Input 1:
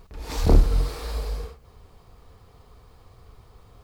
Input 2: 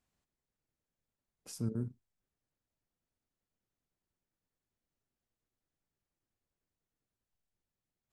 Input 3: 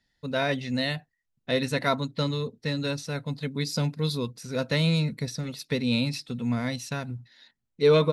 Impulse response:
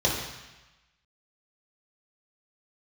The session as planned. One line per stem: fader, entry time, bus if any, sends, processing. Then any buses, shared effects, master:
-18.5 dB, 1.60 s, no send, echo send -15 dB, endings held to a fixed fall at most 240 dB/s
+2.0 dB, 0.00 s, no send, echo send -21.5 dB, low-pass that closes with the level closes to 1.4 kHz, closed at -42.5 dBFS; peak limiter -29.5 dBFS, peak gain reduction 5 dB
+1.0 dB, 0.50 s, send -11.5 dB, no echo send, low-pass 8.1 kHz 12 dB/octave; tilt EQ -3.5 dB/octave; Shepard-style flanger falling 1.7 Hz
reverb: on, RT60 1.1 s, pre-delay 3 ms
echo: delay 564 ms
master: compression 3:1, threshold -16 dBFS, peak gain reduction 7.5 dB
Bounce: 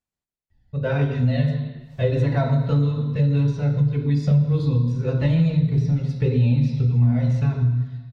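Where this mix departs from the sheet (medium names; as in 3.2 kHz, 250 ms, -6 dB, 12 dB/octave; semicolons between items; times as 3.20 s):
stem 1 -18.5 dB -> -30.5 dB; stem 2 +2.0 dB -> -7.0 dB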